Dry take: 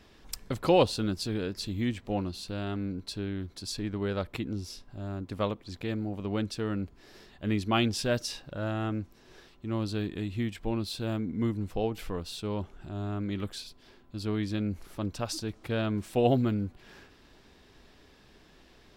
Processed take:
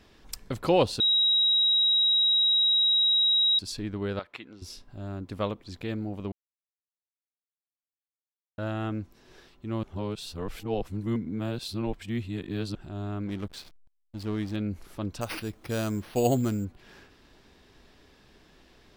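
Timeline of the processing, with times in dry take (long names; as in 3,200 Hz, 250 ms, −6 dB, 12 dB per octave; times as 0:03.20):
0:01.00–0:03.59: beep over 3,830 Hz −19.5 dBFS
0:04.19–0:04.62: resonant band-pass 1,800 Hz, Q 0.67
0:06.32–0:08.58: silence
0:09.83–0:12.75: reverse
0:13.27–0:14.56: slack as between gear wheels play −38.5 dBFS
0:15.21–0:16.65: bad sample-rate conversion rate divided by 6×, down none, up hold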